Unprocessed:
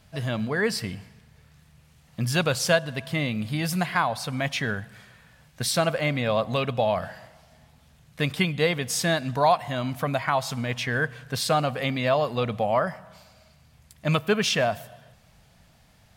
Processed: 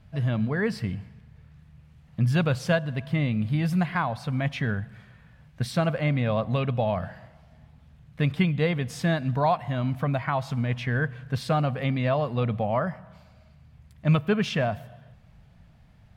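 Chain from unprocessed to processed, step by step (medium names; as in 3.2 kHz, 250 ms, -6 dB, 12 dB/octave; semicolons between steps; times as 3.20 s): tone controls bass +9 dB, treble -12 dB; trim -3.5 dB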